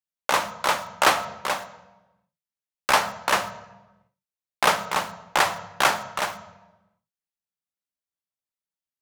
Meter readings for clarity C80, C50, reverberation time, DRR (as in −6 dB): 15.0 dB, 13.5 dB, 1.1 s, 10.5 dB